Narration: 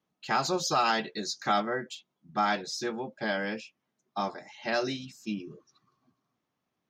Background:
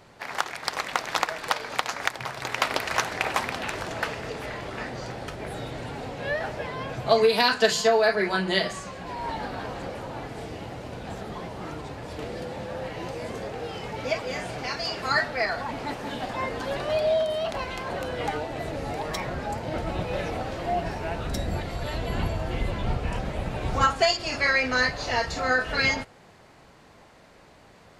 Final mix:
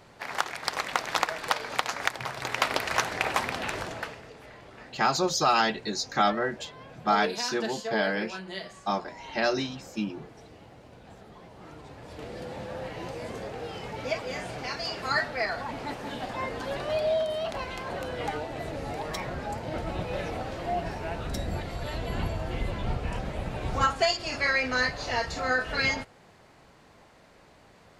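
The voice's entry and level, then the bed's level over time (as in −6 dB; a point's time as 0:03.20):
4.70 s, +3.0 dB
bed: 0:03.80 −1 dB
0:04.30 −13.5 dB
0:11.39 −13.5 dB
0:12.54 −3 dB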